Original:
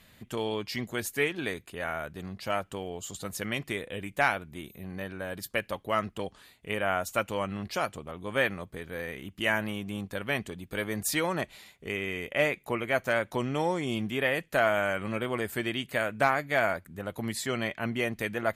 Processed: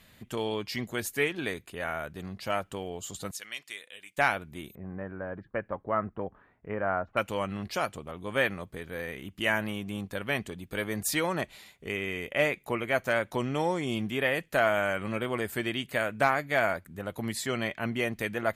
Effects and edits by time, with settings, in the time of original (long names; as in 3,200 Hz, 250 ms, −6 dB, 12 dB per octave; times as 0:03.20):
0:03.31–0:04.18: resonant band-pass 5,800 Hz, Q 0.65
0:04.75–0:07.17: low-pass filter 1,600 Hz 24 dB per octave